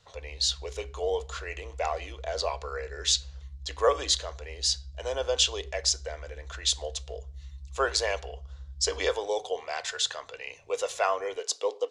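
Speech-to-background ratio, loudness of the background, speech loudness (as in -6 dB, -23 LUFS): 15.5 dB, -45.0 LUFS, -29.5 LUFS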